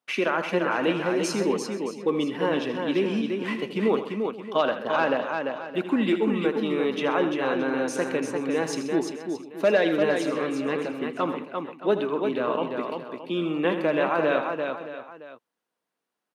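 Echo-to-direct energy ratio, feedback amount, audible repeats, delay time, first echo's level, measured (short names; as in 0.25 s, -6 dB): -3.0 dB, no steady repeat, 8, 80 ms, -11.0 dB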